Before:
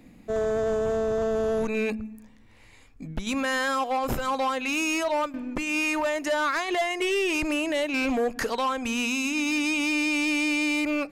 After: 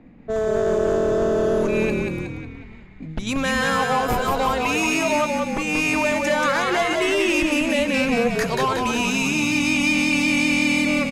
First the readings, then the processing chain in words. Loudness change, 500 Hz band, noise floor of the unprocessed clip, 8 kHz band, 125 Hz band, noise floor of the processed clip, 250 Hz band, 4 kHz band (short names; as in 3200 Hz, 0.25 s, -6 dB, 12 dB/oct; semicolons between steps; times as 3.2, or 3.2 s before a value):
+5.5 dB, +5.5 dB, -53 dBFS, +5.5 dB, +11.5 dB, -40 dBFS, +6.0 dB, +5.5 dB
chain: frequency-shifting echo 0.182 s, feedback 58%, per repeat -41 Hz, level -3.5 dB; low-pass opened by the level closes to 1700 Hz, open at -24.5 dBFS; gain +3.5 dB